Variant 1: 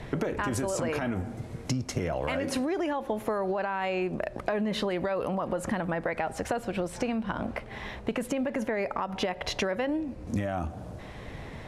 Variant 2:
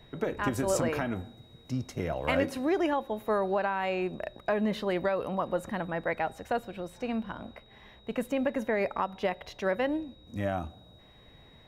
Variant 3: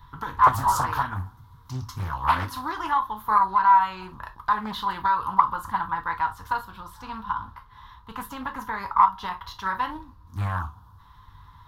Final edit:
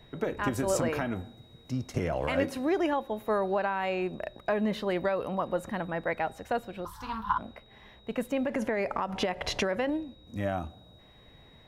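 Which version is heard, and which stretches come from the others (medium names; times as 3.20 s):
2
1.94–2.37 s: from 1
6.85–7.38 s: from 3
8.45–9.90 s: from 1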